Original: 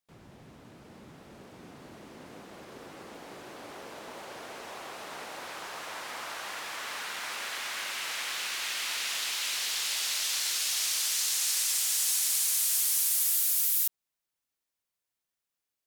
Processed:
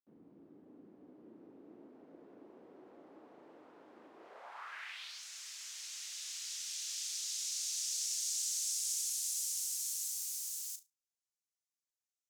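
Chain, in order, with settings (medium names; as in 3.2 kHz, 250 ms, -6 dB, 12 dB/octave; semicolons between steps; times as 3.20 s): one-sided wavefolder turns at -20 dBFS; band-pass sweep 230 Hz -> 5 kHz, 5.33–6.77 s; tape speed +29%; on a send: flutter echo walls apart 6.1 m, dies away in 0.21 s; on the sum: trim -2.5 dB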